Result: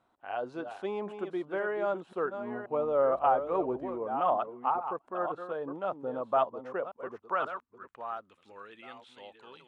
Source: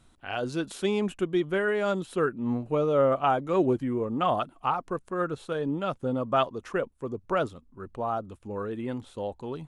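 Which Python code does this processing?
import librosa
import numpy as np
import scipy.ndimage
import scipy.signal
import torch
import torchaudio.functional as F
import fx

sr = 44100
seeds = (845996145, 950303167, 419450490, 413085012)

y = fx.reverse_delay(x, sr, ms=532, wet_db=-8.5)
y = fx.dmg_buzz(y, sr, base_hz=60.0, harmonics=30, level_db=-39.0, tilt_db=-9, odd_only=False, at=(2.81, 3.97), fade=0.02)
y = fx.filter_sweep_bandpass(y, sr, from_hz=790.0, to_hz=2700.0, start_s=6.76, end_s=8.69, q=1.4)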